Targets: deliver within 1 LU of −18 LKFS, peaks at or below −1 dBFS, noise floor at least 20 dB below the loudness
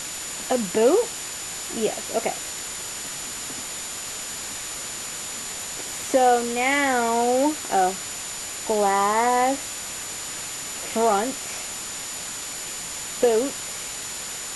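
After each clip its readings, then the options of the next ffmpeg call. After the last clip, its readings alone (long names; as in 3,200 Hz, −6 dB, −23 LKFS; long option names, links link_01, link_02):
interfering tone 7,000 Hz; level of the tone −35 dBFS; background noise floor −33 dBFS; target noise floor −45 dBFS; integrated loudness −24.5 LKFS; sample peak −7.0 dBFS; target loudness −18.0 LKFS
→ -af "bandreject=frequency=7000:width=30"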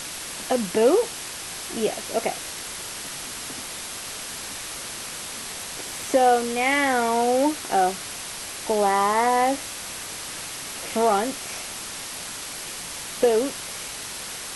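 interfering tone none found; background noise floor −35 dBFS; target noise floor −45 dBFS
→ -af "afftdn=noise_reduction=10:noise_floor=-35"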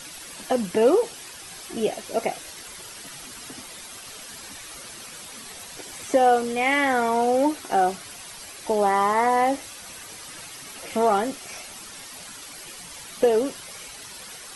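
background noise floor −41 dBFS; target noise floor −43 dBFS
→ -af "afftdn=noise_reduction=6:noise_floor=-41"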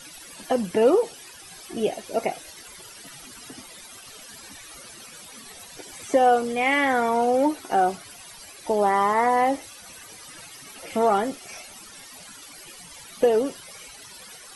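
background noise floor −45 dBFS; integrated loudness −22.5 LKFS; sample peak −8.0 dBFS; target loudness −18.0 LKFS
→ -af "volume=4.5dB"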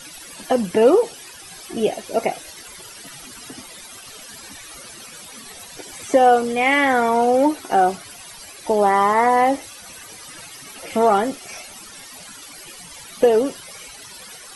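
integrated loudness −18.0 LKFS; sample peak −3.5 dBFS; background noise floor −40 dBFS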